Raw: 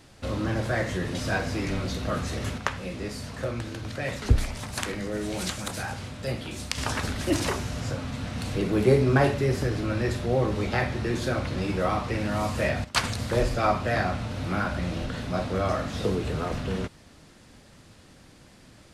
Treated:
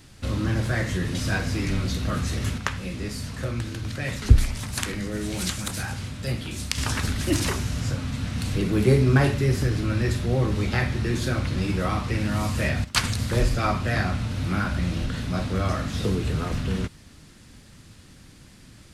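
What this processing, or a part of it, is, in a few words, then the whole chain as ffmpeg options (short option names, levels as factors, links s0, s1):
smiley-face EQ: -af "lowshelf=f=190:g=4,equalizer=f=630:t=o:w=1.5:g=-7.5,highshelf=f=9400:g=5,volume=1.33"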